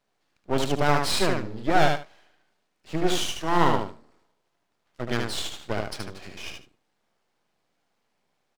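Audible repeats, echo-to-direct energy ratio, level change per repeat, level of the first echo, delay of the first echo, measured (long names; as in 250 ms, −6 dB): 2, −4.0 dB, −14.5 dB, −4.0 dB, 75 ms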